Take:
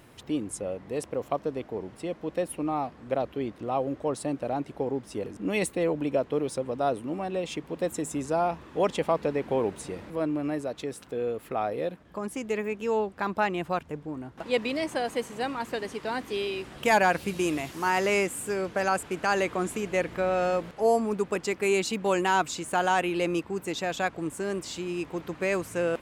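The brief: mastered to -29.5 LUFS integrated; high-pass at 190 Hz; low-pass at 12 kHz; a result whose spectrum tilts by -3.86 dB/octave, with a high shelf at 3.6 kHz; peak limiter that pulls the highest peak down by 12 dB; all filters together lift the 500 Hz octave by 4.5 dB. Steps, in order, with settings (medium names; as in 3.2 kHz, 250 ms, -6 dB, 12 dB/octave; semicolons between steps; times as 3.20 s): high-pass 190 Hz; low-pass 12 kHz; peaking EQ 500 Hz +5.5 dB; treble shelf 3.6 kHz +4 dB; trim +0.5 dB; peak limiter -19 dBFS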